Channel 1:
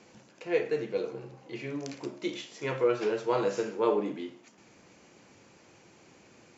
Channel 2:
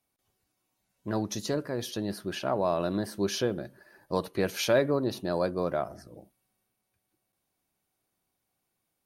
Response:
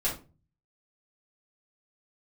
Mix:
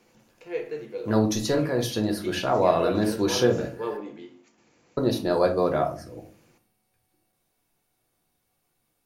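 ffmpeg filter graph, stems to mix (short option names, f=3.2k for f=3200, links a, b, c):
-filter_complex "[0:a]volume=-7.5dB,asplit=2[a][b];[b]volume=-11.5dB[c];[1:a]volume=1.5dB,asplit=3[d][e][f];[d]atrim=end=3.97,asetpts=PTS-STARTPTS,afade=t=out:st=3.966:d=0.004:c=hsin[g];[e]atrim=start=3.97:end=4.97,asetpts=PTS-STARTPTS,volume=0[h];[f]atrim=start=4.97,asetpts=PTS-STARTPTS,afade=t=in:d=0.004:c=hsin[i];[g][h][i]concat=n=3:v=0:a=1,asplit=2[j][k];[k]volume=-6dB[l];[2:a]atrim=start_sample=2205[m];[c][l]amix=inputs=2:normalize=0[n];[n][m]afir=irnorm=-1:irlink=0[o];[a][j][o]amix=inputs=3:normalize=0"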